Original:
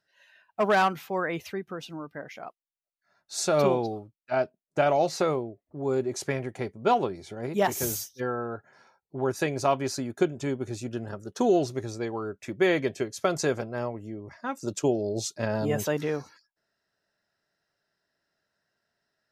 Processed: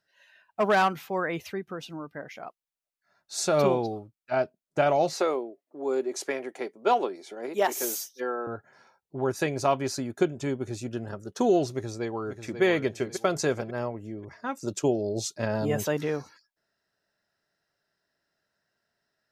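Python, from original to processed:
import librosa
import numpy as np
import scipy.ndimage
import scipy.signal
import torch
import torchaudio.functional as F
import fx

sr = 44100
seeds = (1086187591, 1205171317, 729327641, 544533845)

y = fx.highpass(x, sr, hz=280.0, slope=24, at=(5.13, 8.47))
y = fx.echo_throw(y, sr, start_s=11.72, length_s=0.9, ms=540, feedback_pct=35, wet_db=-8.5)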